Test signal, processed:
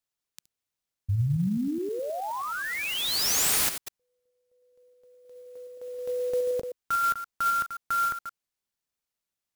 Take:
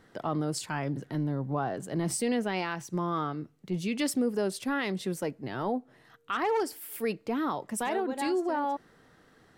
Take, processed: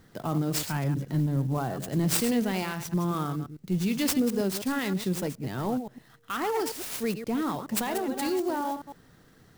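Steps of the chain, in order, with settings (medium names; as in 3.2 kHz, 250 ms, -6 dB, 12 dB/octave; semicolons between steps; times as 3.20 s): chunks repeated in reverse 105 ms, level -9.5 dB; tone controls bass +9 dB, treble +10 dB; sampling jitter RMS 0.024 ms; trim -1.5 dB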